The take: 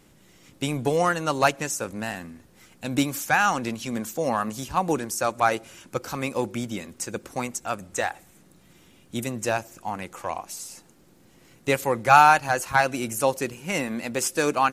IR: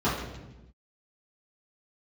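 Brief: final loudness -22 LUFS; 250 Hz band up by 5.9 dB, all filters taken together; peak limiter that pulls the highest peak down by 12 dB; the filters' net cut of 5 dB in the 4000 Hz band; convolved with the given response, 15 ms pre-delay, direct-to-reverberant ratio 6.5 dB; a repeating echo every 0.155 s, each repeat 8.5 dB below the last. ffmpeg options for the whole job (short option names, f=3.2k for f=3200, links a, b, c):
-filter_complex "[0:a]equalizer=f=250:t=o:g=7,equalizer=f=4k:t=o:g=-7,alimiter=limit=-14dB:level=0:latency=1,aecho=1:1:155|310|465|620:0.376|0.143|0.0543|0.0206,asplit=2[a][b];[1:a]atrim=start_sample=2205,adelay=15[c];[b][c]afir=irnorm=-1:irlink=0,volume=-20.5dB[d];[a][d]amix=inputs=2:normalize=0,volume=2dB"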